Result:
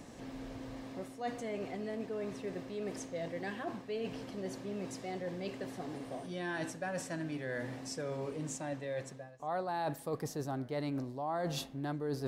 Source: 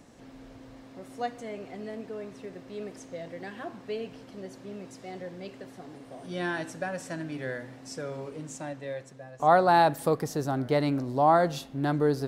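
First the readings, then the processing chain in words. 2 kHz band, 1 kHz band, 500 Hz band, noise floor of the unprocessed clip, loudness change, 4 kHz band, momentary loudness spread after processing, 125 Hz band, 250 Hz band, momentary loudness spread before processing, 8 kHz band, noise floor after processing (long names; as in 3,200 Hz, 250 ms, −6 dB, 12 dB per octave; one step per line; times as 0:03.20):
−8.0 dB, −14.0 dB, −9.0 dB, −50 dBFS, −11.0 dB, −5.0 dB, 6 LU, −7.0 dB, −6.5 dB, 21 LU, −1.5 dB, −51 dBFS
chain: notch filter 1,400 Hz, Q 15
reversed playback
downward compressor 6 to 1, threshold −39 dBFS, peak gain reduction 21 dB
reversed playback
level +3.5 dB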